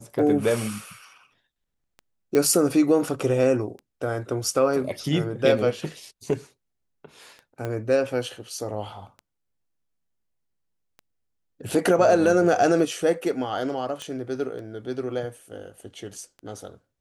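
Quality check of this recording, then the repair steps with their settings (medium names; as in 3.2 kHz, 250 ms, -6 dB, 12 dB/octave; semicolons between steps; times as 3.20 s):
tick 33 1/3 rpm
2.35 s: pop -11 dBFS
7.65 s: pop -17 dBFS
14.02 s: pop -20 dBFS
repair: de-click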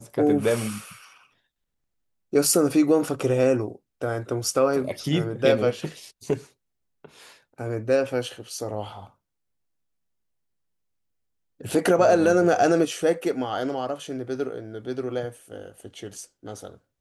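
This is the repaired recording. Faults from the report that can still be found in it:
7.65 s: pop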